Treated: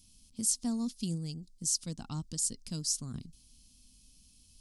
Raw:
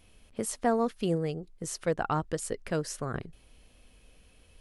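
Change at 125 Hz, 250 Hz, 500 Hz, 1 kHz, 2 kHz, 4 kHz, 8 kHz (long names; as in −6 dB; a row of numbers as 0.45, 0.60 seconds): −3.5, −3.0, −21.0, −20.0, −20.5, +5.5, +7.5 decibels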